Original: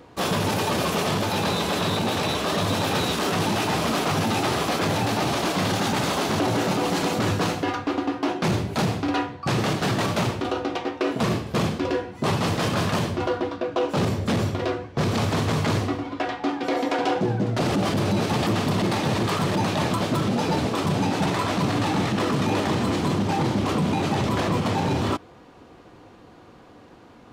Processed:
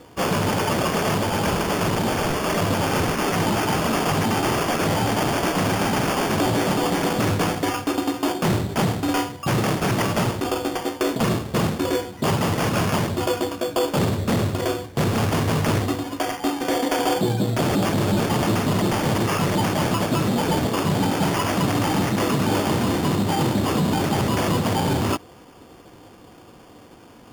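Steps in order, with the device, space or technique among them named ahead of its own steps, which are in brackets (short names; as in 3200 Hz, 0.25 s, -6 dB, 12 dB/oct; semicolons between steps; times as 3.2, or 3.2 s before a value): crushed at another speed (playback speed 0.8×; sample-and-hold 14×; playback speed 1.25×); gain +2 dB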